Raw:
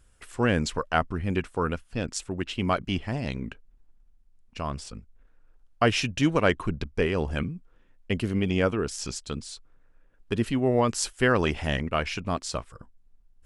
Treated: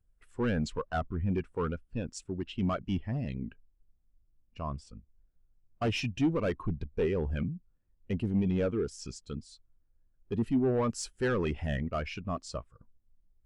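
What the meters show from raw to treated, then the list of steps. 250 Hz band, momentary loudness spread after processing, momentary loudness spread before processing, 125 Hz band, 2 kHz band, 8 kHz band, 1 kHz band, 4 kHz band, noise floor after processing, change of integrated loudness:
−3.5 dB, 12 LU, 13 LU, −4.0 dB, −11.0 dB, −10.5 dB, −9.0 dB, −10.5 dB, −71 dBFS, −5.5 dB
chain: hard clipping −23.5 dBFS, distortion −7 dB
background noise brown −58 dBFS
every bin expanded away from the loudest bin 1.5 to 1
level +3 dB

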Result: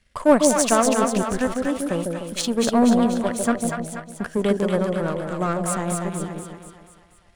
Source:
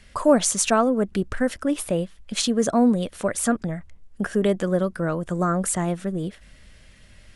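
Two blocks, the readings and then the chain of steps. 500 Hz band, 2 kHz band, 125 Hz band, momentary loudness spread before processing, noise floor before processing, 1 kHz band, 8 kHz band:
+2.0 dB, +2.0 dB, −0.5 dB, 10 LU, −51 dBFS, +3.0 dB, 0.0 dB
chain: power curve on the samples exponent 1.4
echo with a time of its own for lows and highs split 740 Hz, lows 150 ms, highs 241 ms, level −3 dB
level +3.5 dB

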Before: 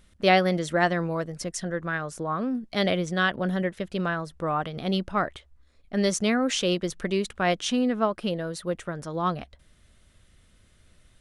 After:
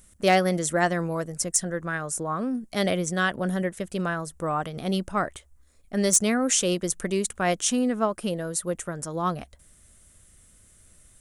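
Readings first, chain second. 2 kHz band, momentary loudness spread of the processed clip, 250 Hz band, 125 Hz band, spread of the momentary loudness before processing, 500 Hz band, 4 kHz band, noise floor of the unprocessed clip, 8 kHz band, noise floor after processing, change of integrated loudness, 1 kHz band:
−1.0 dB, 9 LU, 0.0 dB, 0.0 dB, 8 LU, 0.0 dB, −1.5 dB, −60 dBFS, +11.0 dB, −57 dBFS, +1.0 dB, −0.5 dB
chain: high shelf with overshoot 5,700 Hz +12 dB, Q 1.5
wave folding −9.5 dBFS

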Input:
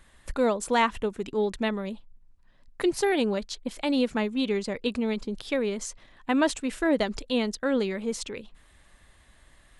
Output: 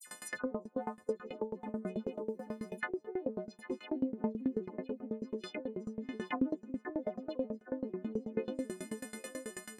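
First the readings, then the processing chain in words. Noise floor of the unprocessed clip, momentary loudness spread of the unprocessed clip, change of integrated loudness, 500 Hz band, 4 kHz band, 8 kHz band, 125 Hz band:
−58 dBFS, 11 LU, −12.0 dB, −11.0 dB, −20.0 dB, below −10 dB, can't be measured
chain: every partial snapped to a pitch grid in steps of 3 semitones
high-pass filter 200 Hz 24 dB per octave
treble cut that deepens with the level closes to 510 Hz, closed at −25 dBFS
on a send: repeating echo 803 ms, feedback 35%, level −13.5 dB
on the sum: noise gate with hold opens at −47 dBFS
downward compressor 4 to 1, threshold −45 dBFS, peak gain reduction 19.5 dB
phase shifter 0.48 Hz, delay 1.9 ms, feedback 36%
parametric band 3,400 Hz −8 dB 0.85 octaves
all-pass dispersion lows, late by 65 ms, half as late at 2,500 Hz
tremolo with a ramp in dB decaying 9.2 Hz, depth 23 dB
level +13.5 dB

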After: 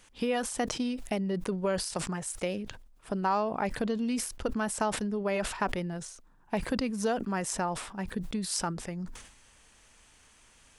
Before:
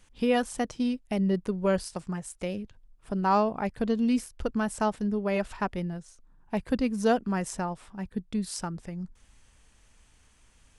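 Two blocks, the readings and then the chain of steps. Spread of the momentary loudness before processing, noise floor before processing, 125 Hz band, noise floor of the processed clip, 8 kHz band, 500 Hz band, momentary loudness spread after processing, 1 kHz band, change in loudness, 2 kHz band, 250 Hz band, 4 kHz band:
11 LU, −61 dBFS, −3.0 dB, −60 dBFS, +5.5 dB, −2.5 dB, 7 LU, −2.0 dB, −2.5 dB, 0.0 dB, −4.5 dB, +3.0 dB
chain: downward compressor 4 to 1, threshold −30 dBFS, peak gain reduction 10.5 dB
low-shelf EQ 190 Hz −11 dB
level that may fall only so fast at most 76 dB per second
level +5 dB

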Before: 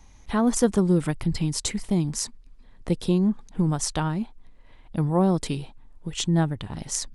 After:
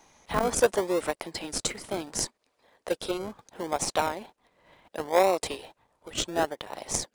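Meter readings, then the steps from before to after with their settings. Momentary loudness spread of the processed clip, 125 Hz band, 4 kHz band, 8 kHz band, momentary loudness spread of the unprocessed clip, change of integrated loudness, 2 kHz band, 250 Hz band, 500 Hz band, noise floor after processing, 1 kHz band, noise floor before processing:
15 LU, −19.0 dB, −0.5 dB, −1.5 dB, 12 LU, −4.0 dB, +3.5 dB, −12.5 dB, +1.5 dB, −76 dBFS, +3.0 dB, −51 dBFS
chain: four-pole ladder high-pass 470 Hz, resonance 40%
in parallel at −6 dB: sample-and-hold swept by an LFO 38×, swing 60% 0.7 Hz
on the sum: saturating transformer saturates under 700 Hz
level +8.5 dB

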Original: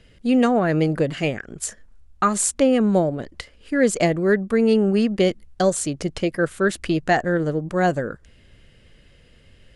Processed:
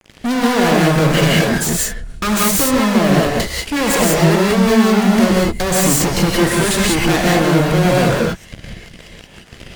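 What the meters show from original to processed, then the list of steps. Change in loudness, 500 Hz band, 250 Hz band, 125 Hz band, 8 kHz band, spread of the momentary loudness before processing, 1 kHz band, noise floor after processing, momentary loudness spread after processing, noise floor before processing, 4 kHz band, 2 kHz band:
+6.5 dB, +4.0 dB, +6.5 dB, +10.0 dB, +9.5 dB, 11 LU, +7.0 dB, −41 dBFS, 7 LU, −53 dBFS, +14.0 dB, +8.5 dB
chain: phase distortion by the signal itself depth 0.16 ms
parametric band 900 Hz −8.5 dB 0.46 octaves
rotating-speaker cabinet horn 5.5 Hz
fuzz pedal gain 45 dB, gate −47 dBFS
reverb whose tail is shaped and stops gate 210 ms rising, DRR −3.5 dB
level −4 dB

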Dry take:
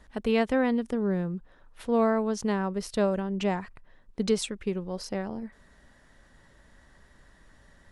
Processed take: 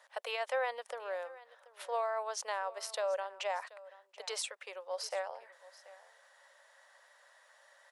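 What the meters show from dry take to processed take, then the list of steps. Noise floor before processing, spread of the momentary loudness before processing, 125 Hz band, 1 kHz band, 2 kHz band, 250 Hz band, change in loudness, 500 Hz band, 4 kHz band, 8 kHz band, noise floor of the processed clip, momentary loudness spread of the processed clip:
−59 dBFS, 14 LU, below −40 dB, −4.0 dB, −4.0 dB, below −40 dB, −9.5 dB, −9.0 dB, −3.0 dB, −2.0 dB, −64 dBFS, 20 LU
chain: Chebyshev high-pass filter 540 Hz, order 5
brickwall limiter −26.5 dBFS, peak gain reduction 9 dB
single-tap delay 732 ms −19 dB

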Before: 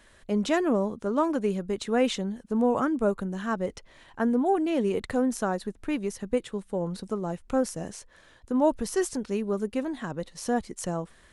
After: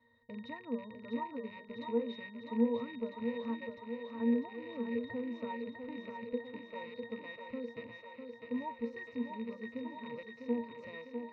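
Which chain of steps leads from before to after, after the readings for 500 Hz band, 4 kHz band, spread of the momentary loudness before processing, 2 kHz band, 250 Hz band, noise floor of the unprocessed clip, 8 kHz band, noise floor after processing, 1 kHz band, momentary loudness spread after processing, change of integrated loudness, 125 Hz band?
−12.0 dB, −12.5 dB, 8 LU, −8.5 dB, −10.0 dB, −57 dBFS, below −40 dB, −55 dBFS, −13.5 dB, 13 LU, −11.5 dB, −18.5 dB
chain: loose part that buzzes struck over −36 dBFS, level −18 dBFS
low-pass filter 5,200 Hz 24 dB per octave
low-shelf EQ 330 Hz −9 dB
downward compressor, threshold −27 dBFS, peak gain reduction 8.5 dB
resonances in every octave A#, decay 0.22 s
on a send: feedback echo with a high-pass in the loop 651 ms, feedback 75%, high-pass 270 Hz, level −5 dB
on the sum: level +6.5 dB

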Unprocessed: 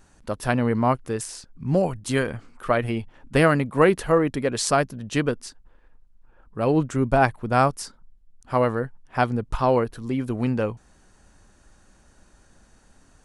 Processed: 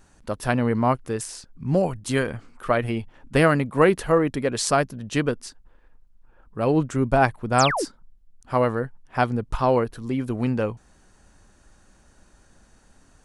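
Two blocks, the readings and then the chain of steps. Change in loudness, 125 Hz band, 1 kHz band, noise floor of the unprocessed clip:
0.0 dB, 0.0 dB, 0.0 dB, −57 dBFS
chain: sound drawn into the spectrogram fall, 0:07.58–0:07.85, 260–9,200 Hz −25 dBFS

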